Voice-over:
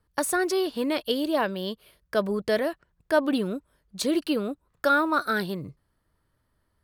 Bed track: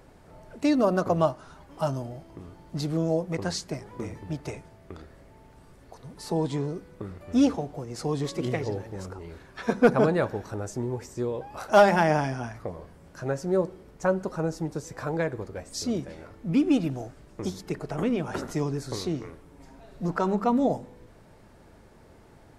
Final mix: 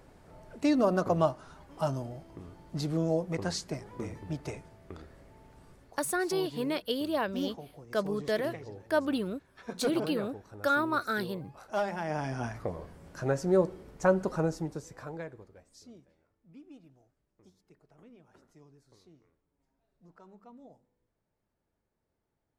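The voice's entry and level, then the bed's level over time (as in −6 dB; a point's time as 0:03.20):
5.80 s, −5.5 dB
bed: 0:05.72 −3 dB
0:06.17 −14 dB
0:12.01 −14 dB
0:12.45 0 dB
0:14.39 0 dB
0:16.27 −29.5 dB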